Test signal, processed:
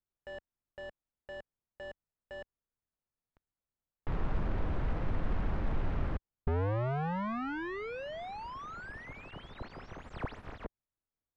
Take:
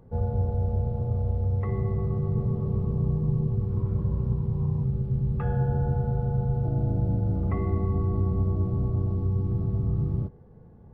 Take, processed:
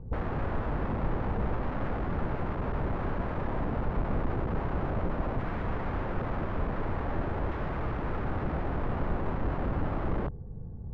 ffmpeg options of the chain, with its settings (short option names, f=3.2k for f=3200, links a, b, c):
-af "aeval=exprs='(mod(31.6*val(0)+1,2)-1)/31.6':c=same,lowpass=1.5k,aemphasis=mode=reproduction:type=bsi"